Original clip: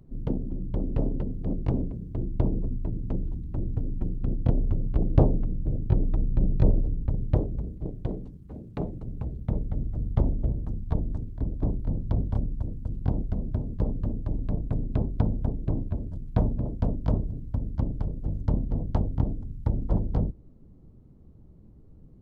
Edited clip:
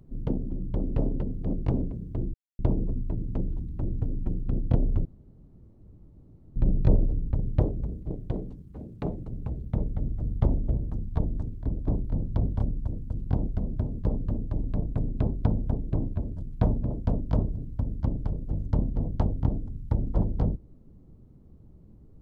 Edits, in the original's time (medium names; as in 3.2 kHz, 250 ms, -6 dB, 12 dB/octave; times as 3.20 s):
2.34 s: insert silence 0.25 s
4.80–6.31 s: room tone